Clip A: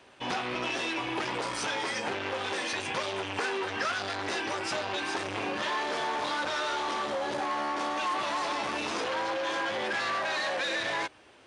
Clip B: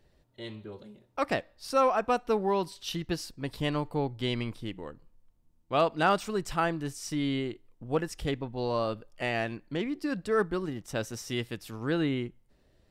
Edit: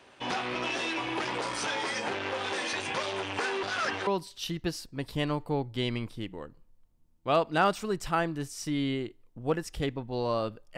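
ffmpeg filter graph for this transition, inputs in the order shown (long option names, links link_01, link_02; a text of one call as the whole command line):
ffmpeg -i cue0.wav -i cue1.wav -filter_complex "[0:a]apad=whole_dur=10.77,atrim=end=10.77,asplit=2[link_01][link_02];[link_01]atrim=end=3.632[link_03];[link_02]atrim=start=3.628:end=4.072,asetpts=PTS-STARTPTS,areverse[link_04];[1:a]atrim=start=2.518:end=9.22[link_05];[link_03][link_04]acrossfade=duration=0.004:curve1=hsin:curve2=hsin[link_06];[link_06][link_05]acrossfade=duration=0.004:curve1=hsin:curve2=hsin" out.wav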